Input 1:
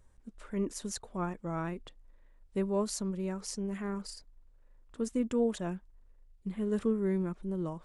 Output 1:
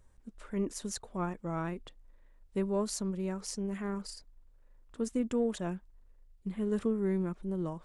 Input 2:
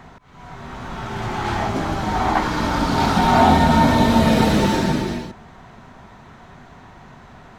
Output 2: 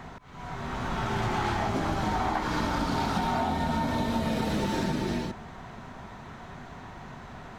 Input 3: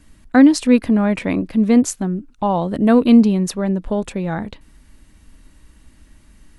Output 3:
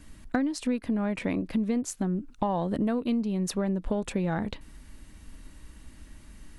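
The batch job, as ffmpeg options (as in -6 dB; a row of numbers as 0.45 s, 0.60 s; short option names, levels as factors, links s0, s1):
-af "acompressor=threshold=0.0631:ratio=20,aeval=exprs='0.211*(cos(1*acos(clip(val(0)/0.211,-1,1)))-cos(1*PI/2))+0.00237*(cos(8*acos(clip(val(0)/0.211,-1,1)))-cos(8*PI/2))':c=same"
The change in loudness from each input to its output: -0.5 LU, -11.0 LU, -13.0 LU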